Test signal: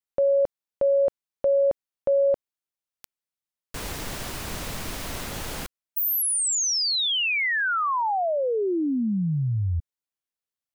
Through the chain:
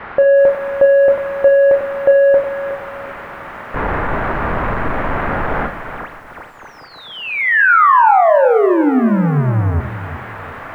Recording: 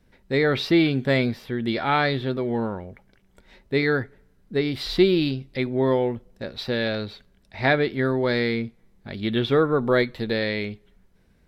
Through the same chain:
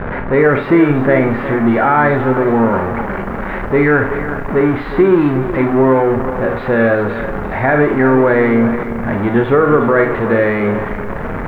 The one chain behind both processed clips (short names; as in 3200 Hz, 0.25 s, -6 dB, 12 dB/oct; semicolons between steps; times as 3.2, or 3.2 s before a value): zero-crossing step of -22 dBFS; LPF 1800 Hz 24 dB/oct; bell 1200 Hz +6.5 dB 2.8 oct; Schroeder reverb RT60 0.36 s, combs from 27 ms, DRR 6 dB; maximiser +6.5 dB; lo-fi delay 0.365 s, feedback 35%, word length 7-bit, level -12 dB; gain -2 dB